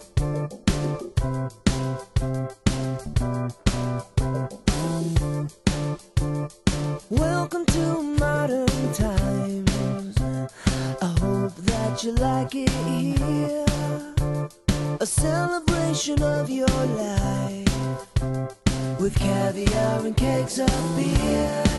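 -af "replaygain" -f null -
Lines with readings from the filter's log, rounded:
track_gain = +5.8 dB
track_peak = 0.355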